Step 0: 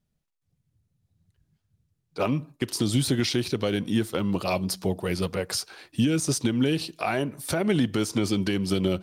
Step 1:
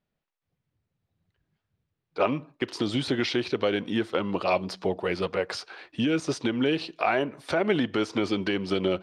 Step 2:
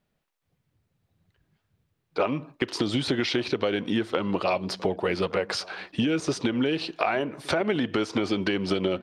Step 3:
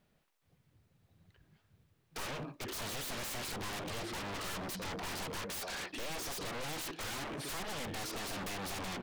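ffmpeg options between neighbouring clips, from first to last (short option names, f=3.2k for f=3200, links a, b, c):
-af "lowpass=5.2k,bass=f=250:g=-13,treble=f=4k:g=-10,volume=3.5dB"
-filter_complex "[0:a]acompressor=threshold=-29dB:ratio=4,asplit=2[a][b];[b]adelay=1166,volume=-22dB,highshelf=f=4k:g=-26.2[c];[a][c]amix=inputs=2:normalize=0,volume=6.5dB"
-af "aeval=exprs='(tanh(22.4*val(0)+0.25)-tanh(0.25))/22.4':c=same,aeval=exprs='0.0106*(abs(mod(val(0)/0.0106+3,4)-2)-1)':c=same,volume=3.5dB"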